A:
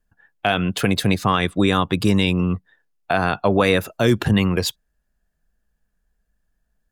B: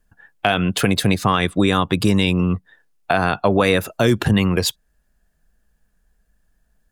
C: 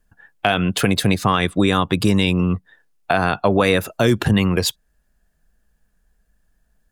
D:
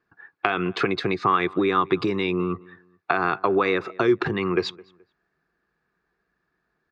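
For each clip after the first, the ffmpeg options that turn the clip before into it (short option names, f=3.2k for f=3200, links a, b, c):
-af "equalizer=f=9.3k:w=1.5:g=2.5,acompressor=threshold=-30dB:ratio=1.5,volume=7dB"
-af anull
-filter_complex "[0:a]acompressor=threshold=-20dB:ratio=3,highpass=180,equalizer=f=220:t=q:w=4:g=-8,equalizer=f=370:t=q:w=4:g=10,equalizer=f=590:t=q:w=4:g=-8,equalizer=f=1.2k:t=q:w=4:g=9,equalizer=f=2.2k:t=q:w=4:g=4,equalizer=f=3.1k:t=q:w=4:g=-9,lowpass=f=4.2k:w=0.5412,lowpass=f=4.2k:w=1.3066,asplit=2[a][b];[b]adelay=213,lowpass=f=2.4k:p=1,volume=-23dB,asplit=2[c][d];[d]adelay=213,lowpass=f=2.4k:p=1,volume=0.3[e];[a][c][e]amix=inputs=3:normalize=0"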